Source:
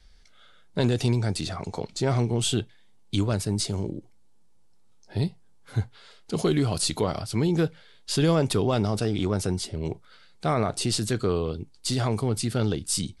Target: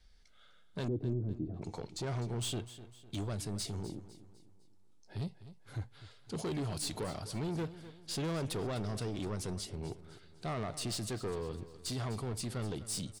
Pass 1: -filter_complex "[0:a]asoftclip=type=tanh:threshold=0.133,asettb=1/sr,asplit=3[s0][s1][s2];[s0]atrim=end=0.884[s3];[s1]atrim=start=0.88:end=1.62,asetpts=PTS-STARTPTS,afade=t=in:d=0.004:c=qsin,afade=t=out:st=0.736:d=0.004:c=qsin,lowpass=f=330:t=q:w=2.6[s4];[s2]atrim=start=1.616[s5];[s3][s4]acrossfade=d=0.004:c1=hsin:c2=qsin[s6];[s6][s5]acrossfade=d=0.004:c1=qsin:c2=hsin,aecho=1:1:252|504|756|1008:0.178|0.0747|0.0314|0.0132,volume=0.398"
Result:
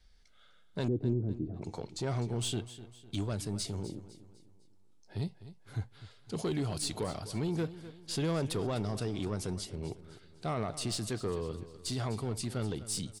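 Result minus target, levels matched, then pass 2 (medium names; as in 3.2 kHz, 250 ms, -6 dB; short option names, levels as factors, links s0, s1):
saturation: distortion -8 dB
-filter_complex "[0:a]asoftclip=type=tanh:threshold=0.0596,asettb=1/sr,asplit=3[s0][s1][s2];[s0]atrim=end=0.884[s3];[s1]atrim=start=0.88:end=1.62,asetpts=PTS-STARTPTS,afade=t=in:d=0.004:c=qsin,afade=t=out:st=0.736:d=0.004:c=qsin,lowpass=f=330:t=q:w=2.6[s4];[s2]atrim=start=1.616[s5];[s3][s4]acrossfade=d=0.004:c1=hsin:c2=qsin[s6];[s6][s5]acrossfade=d=0.004:c1=qsin:c2=hsin,aecho=1:1:252|504|756|1008:0.178|0.0747|0.0314|0.0132,volume=0.398"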